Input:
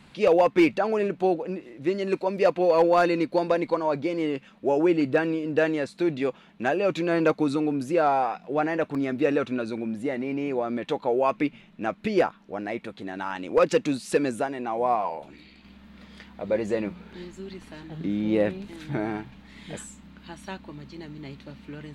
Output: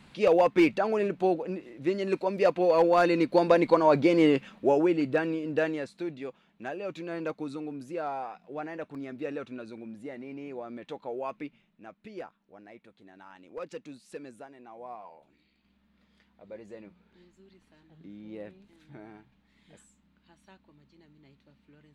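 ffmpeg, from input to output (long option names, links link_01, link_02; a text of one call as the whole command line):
ffmpeg -i in.wav -af "volume=6dB,afade=type=in:start_time=2.96:duration=1.3:silence=0.375837,afade=type=out:start_time=4.26:duration=0.63:silence=0.316228,afade=type=out:start_time=5.53:duration=0.63:silence=0.398107,afade=type=out:start_time=11.27:duration=0.56:silence=0.446684" out.wav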